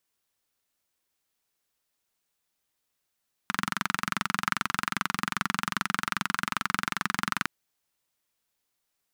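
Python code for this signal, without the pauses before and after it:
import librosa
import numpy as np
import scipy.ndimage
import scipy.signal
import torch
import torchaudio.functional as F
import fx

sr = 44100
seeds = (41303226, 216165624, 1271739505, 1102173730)

y = fx.engine_single(sr, seeds[0], length_s=3.96, rpm=2700, resonances_hz=(200.0, 1300.0))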